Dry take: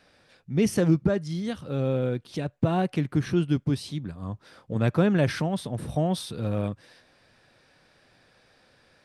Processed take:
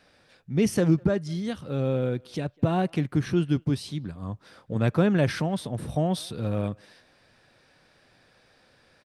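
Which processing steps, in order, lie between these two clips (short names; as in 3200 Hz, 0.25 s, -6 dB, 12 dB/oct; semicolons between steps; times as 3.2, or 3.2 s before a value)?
speakerphone echo 0.2 s, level -27 dB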